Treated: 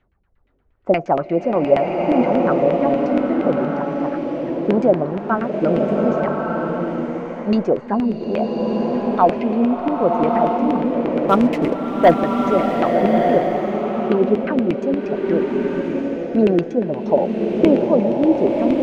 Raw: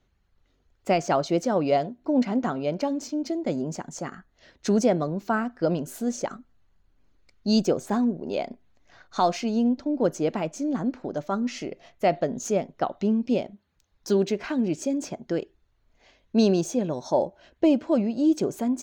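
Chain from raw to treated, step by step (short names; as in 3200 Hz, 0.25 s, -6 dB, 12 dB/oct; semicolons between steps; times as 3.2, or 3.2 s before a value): LFO low-pass saw down 8.5 Hz 320–2600 Hz; 11.23–12.14 sample leveller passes 2; bloom reverb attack 1.23 s, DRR 0 dB; gain +2.5 dB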